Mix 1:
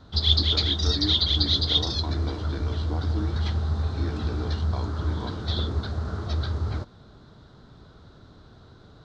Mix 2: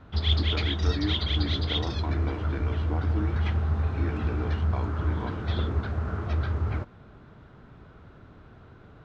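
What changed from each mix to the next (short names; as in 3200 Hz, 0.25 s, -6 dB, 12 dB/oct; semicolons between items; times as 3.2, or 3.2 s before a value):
master: add resonant high shelf 3200 Hz -8 dB, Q 3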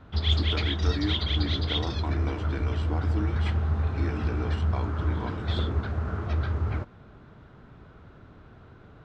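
speech: remove air absorption 180 m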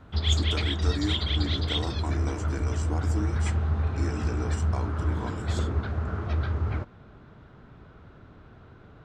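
speech: add resonant high shelf 5000 Hz +13 dB, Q 3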